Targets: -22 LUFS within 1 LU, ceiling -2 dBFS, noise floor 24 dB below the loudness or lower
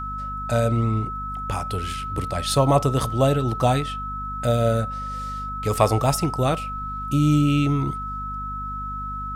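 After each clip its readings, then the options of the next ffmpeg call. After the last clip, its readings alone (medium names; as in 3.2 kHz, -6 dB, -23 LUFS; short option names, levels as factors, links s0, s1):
hum 50 Hz; highest harmonic 250 Hz; hum level -32 dBFS; steady tone 1.3 kHz; tone level -29 dBFS; loudness -23.5 LUFS; peak level -3.5 dBFS; loudness target -22.0 LUFS
-> -af "bandreject=f=50:t=h:w=4,bandreject=f=100:t=h:w=4,bandreject=f=150:t=h:w=4,bandreject=f=200:t=h:w=4,bandreject=f=250:t=h:w=4"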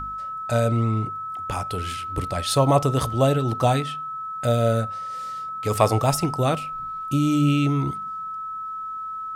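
hum not found; steady tone 1.3 kHz; tone level -29 dBFS
-> -af "bandreject=f=1300:w=30"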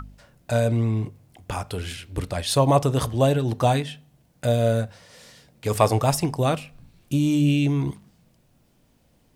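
steady tone not found; loudness -23.0 LUFS; peak level -3.5 dBFS; loudness target -22.0 LUFS
-> -af "volume=1.12"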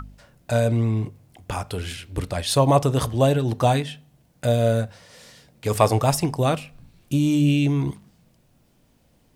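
loudness -22.0 LUFS; peak level -2.5 dBFS; noise floor -61 dBFS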